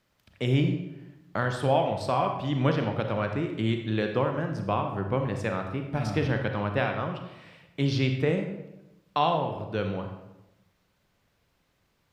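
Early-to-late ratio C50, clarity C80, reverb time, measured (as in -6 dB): 6.0 dB, 8.5 dB, 0.95 s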